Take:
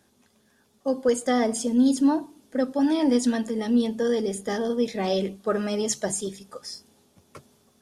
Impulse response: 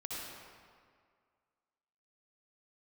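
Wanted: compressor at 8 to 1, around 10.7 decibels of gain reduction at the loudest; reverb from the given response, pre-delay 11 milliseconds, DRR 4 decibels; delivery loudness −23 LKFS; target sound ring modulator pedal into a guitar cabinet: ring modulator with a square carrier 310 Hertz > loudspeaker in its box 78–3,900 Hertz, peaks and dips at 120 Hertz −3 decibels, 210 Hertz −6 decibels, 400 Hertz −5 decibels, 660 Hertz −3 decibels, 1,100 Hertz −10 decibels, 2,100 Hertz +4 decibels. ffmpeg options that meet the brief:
-filter_complex "[0:a]acompressor=threshold=-27dB:ratio=8,asplit=2[link_01][link_02];[1:a]atrim=start_sample=2205,adelay=11[link_03];[link_02][link_03]afir=irnorm=-1:irlink=0,volume=-5dB[link_04];[link_01][link_04]amix=inputs=2:normalize=0,aeval=exprs='val(0)*sgn(sin(2*PI*310*n/s))':channel_layout=same,highpass=78,equalizer=frequency=120:width_type=q:width=4:gain=-3,equalizer=frequency=210:width_type=q:width=4:gain=-6,equalizer=frequency=400:width_type=q:width=4:gain=-5,equalizer=frequency=660:width_type=q:width=4:gain=-3,equalizer=frequency=1100:width_type=q:width=4:gain=-10,equalizer=frequency=2100:width_type=q:width=4:gain=4,lowpass=frequency=3900:width=0.5412,lowpass=frequency=3900:width=1.3066,volume=10.5dB"

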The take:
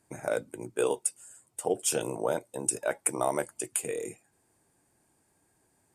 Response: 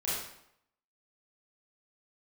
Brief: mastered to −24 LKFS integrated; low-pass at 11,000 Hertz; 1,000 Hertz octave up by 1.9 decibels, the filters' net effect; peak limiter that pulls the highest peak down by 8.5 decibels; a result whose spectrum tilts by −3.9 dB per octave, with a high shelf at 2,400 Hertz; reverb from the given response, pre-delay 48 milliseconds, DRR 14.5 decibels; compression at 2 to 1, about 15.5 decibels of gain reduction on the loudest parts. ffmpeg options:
-filter_complex "[0:a]lowpass=11000,equalizer=frequency=1000:width_type=o:gain=3.5,highshelf=frequency=2400:gain=-6,acompressor=threshold=-52dB:ratio=2,alimiter=level_in=11.5dB:limit=-24dB:level=0:latency=1,volume=-11.5dB,asplit=2[link_01][link_02];[1:a]atrim=start_sample=2205,adelay=48[link_03];[link_02][link_03]afir=irnorm=-1:irlink=0,volume=-20.5dB[link_04];[link_01][link_04]amix=inputs=2:normalize=0,volume=25.5dB"

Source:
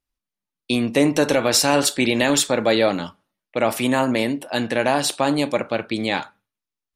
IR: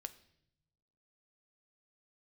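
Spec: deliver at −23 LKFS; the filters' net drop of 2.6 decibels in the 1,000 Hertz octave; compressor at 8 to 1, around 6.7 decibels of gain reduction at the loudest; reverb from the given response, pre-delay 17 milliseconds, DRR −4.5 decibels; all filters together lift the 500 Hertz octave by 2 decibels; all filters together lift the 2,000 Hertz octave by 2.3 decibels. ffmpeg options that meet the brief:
-filter_complex "[0:a]equalizer=frequency=500:width_type=o:gain=4,equalizer=frequency=1000:width_type=o:gain=-6.5,equalizer=frequency=2000:width_type=o:gain=4.5,acompressor=threshold=-18dB:ratio=8,asplit=2[link_01][link_02];[1:a]atrim=start_sample=2205,adelay=17[link_03];[link_02][link_03]afir=irnorm=-1:irlink=0,volume=8.5dB[link_04];[link_01][link_04]amix=inputs=2:normalize=0,volume=-5.5dB"

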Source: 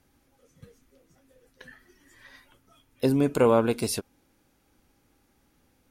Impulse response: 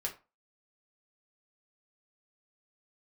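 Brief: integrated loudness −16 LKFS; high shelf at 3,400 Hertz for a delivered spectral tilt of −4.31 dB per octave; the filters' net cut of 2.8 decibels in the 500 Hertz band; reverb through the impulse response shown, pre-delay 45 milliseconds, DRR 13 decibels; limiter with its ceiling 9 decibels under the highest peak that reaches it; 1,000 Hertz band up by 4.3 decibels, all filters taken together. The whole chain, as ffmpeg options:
-filter_complex "[0:a]equalizer=frequency=500:width_type=o:gain=-4.5,equalizer=frequency=1000:width_type=o:gain=5.5,highshelf=frequency=3400:gain=8,alimiter=limit=-17.5dB:level=0:latency=1,asplit=2[link_01][link_02];[1:a]atrim=start_sample=2205,adelay=45[link_03];[link_02][link_03]afir=irnorm=-1:irlink=0,volume=-14.5dB[link_04];[link_01][link_04]amix=inputs=2:normalize=0,volume=13dB"

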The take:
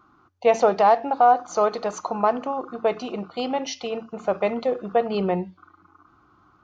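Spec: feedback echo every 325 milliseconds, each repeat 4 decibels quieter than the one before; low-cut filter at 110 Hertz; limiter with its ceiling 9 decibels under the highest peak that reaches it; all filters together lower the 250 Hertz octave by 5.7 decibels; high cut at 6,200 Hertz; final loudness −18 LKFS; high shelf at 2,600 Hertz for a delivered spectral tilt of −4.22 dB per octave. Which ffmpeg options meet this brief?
ffmpeg -i in.wav -af "highpass=110,lowpass=6200,equalizer=frequency=250:width_type=o:gain=-7,highshelf=frequency=2600:gain=-8.5,alimiter=limit=-17dB:level=0:latency=1,aecho=1:1:325|650|975|1300|1625|1950|2275|2600|2925:0.631|0.398|0.25|0.158|0.0994|0.0626|0.0394|0.0249|0.0157,volume=9.5dB" out.wav

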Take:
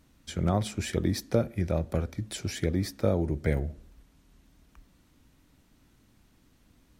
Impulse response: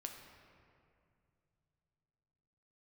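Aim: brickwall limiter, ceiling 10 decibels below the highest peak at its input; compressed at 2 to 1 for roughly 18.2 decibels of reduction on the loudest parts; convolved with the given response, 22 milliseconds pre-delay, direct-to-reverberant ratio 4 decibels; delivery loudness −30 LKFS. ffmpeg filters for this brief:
-filter_complex "[0:a]acompressor=threshold=-55dB:ratio=2,alimiter=level_in=13dB:limit=-24dB:level=0:latency=1,volume=-13dB,asplit=2[link_01][link_02];[1:a]atrim=start_sample=2205,adelay=22[link_03];[link_02][link_03]afir=irnorm=-1:irlink=0,volume=-1dB[link_04];[link_01][link_04]amix=inputs=2:normalize=0,volume=18dB"

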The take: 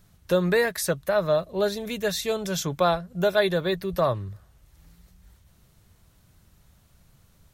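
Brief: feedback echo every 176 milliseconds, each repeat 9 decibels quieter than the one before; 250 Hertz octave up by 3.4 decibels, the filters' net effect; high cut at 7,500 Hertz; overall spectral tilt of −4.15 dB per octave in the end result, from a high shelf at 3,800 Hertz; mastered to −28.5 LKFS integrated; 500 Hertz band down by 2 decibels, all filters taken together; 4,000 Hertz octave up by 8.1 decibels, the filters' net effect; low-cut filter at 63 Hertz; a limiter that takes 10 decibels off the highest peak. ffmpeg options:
ffmpeg -i in.wav -af "highpass=63,lowpass=7500,equalizer=frequency=250:width_type=o:gain=7,equalizer=frequency=500:width_type=o:gain=-4.5,highshelf=frequency=3800:gain=6,equalizer=frequency=4000:width_type=o:gain=6,alimiter=limit=-16.5dB:level=0:latency=1,aecho=1:1:176|352|528|704:0.355|0.124|0.0435|0.0152,volume=-2dB" out.wav

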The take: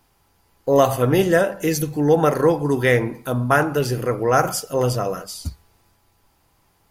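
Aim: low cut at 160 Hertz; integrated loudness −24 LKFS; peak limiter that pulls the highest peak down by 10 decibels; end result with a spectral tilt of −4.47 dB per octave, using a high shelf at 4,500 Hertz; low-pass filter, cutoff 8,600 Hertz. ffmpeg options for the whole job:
ffmpeg -i in.wav -af "highpass=160,lowpass=8600,highshelf=frequency=4500:gain=8,volume=-1.5dB,alimiter=limit=-12.5dB:level=0:latency=1" out.wav

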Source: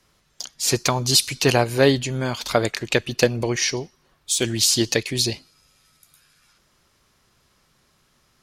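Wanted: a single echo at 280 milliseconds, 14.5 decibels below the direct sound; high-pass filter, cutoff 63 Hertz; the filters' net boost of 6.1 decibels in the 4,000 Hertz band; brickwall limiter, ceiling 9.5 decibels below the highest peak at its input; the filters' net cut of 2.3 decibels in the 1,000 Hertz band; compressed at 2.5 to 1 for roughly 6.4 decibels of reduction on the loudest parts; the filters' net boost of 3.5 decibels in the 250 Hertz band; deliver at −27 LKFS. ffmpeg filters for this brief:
ffmpeg -i in.wav -af "highpass=63,equalizer=frequency=250:width_type=o:gain=4.5,equalizer=frequency=1000:width_type=o:gain=-4,equalizer=frequency=4000:width_type=o:gain=7.5,acompressor=threshold=-17dB:ratio=2.5,alimiter=limit=-10.5dB:level=0:latency=1,aecho=1:1:280:0.188,volume=-4dB" out.wav

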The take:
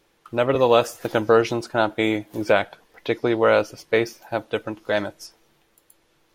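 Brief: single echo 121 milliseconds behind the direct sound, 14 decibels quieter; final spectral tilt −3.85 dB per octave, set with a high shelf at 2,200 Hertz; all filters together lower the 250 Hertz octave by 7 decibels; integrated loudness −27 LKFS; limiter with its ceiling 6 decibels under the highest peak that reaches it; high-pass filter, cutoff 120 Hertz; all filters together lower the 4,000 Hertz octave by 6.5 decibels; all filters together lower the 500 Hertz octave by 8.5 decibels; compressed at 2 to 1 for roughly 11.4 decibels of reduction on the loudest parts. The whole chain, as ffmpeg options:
ffmpeg -i in.wav -af "highpass=120,equalizer=frequency=250:width_type=o:gain=-5.5,equalizer=frequency=500:width_type=o:gain=-8.5,highshelf=frequency=2200:gain=-3.5,equalizer=frequency=4000:width_type=o:gain=-5,acompressor=threshold=-39dB:ratio=2,alimiter=limit=-23.5dB:level=0:latency=1,aecho=1:1:121:0.2,volume=13dB" out.wav

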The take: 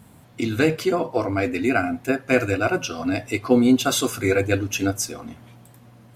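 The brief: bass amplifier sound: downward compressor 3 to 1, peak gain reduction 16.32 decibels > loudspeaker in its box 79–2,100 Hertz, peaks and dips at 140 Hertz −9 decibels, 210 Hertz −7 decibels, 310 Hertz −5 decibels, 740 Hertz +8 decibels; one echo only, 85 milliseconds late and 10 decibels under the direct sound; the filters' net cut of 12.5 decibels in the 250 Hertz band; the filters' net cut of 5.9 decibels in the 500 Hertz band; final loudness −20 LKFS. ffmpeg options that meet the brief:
ffmpeg -i in.wav -af "equalizer=frequency=250:width_type=o:gain=-7.5,equalizer=frequency=500:width_type=o:gain=-7,aecho=1:1:85:0.316,acompressor=threshold=-40dB:ratio=3,highpass=frequency=79:width=0.5412,highpass=frequency=79:width=1.3066,equalizer=frequency=140:width_type=q:width=4:gain=-9,equalizer=frequency=210:width_type=q:width=4:gain=-7,equalizer=frequency=310:width_type=q:width=4:gain=-5,equalizer=frequency=740:width_type=q:width=4:gain=8,lowpass=frequency=2100:width=0.5412,lowpass=frequency=2100:width=1.3066,volume=21dB" out.wav

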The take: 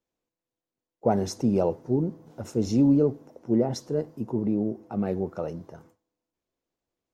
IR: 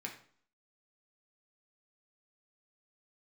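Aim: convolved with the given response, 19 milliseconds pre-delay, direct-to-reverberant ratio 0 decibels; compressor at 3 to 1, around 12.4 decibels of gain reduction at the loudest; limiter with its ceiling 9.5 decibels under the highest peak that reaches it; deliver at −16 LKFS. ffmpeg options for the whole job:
-filter_complex "[0:a]acompressor=threshold=-34dB:ratio=3,alimiter=level_in=5.5dB:limit=-24dB:level=0:latency=1,volume=-5.5dB,asplit=2[link_01][link_02];[1:a]atrim=start_sample=2205,adelay=19[link_03];[link_02][link_03]afir=irnorm=-1:irlink=0,volume=0.5dB[link_04];[link_01][link_04]amix=inputs=2:normalize=0,volume=20.5dB"

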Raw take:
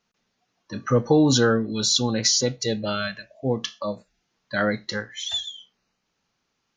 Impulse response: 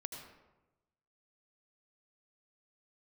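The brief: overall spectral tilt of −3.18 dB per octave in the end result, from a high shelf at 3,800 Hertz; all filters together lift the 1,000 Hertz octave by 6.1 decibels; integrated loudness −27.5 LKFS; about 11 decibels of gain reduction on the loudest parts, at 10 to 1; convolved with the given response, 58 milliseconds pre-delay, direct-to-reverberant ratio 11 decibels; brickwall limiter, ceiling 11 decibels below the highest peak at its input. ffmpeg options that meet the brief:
-filter_complex "[0:a]equalizer=frequency=1000:width_type=o:gain=8,highshelf=frequency=3800:gain=7,acompressor=threshold=-23dB:ratio=10,alimiter=limit=-22dB:level=0:latency=1,asplit=2[link_01][link_02];[1:a]atrim=start_sample=2205,adelay=58[link_03];[link_02][link_03]afir=irnorm=-1:irlink=0,volume=-9dB[link_04];[link_01][link_04]amix=inputs=2:normalize=0,volume=4.5dB"

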